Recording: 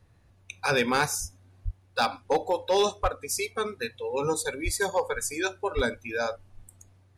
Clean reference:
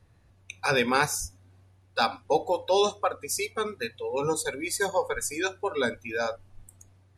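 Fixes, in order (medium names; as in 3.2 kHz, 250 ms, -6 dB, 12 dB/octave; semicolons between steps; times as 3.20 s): clip repair -16.5 dBFS; de-plosive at 1.64/3.02/4.64/5.75 s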